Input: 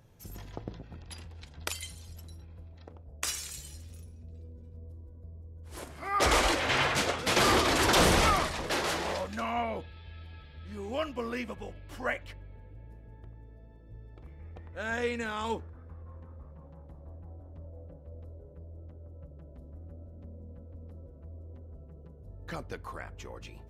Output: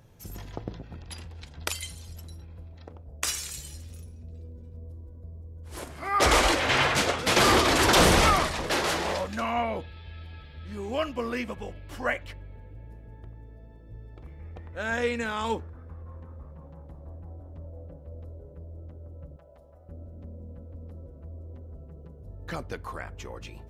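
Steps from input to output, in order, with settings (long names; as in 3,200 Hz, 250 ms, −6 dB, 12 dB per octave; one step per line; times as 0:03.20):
0:19.36–0:19.89: low shelf with overshoot 430 Hz −12.5 dB, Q 1.5
level +4 dB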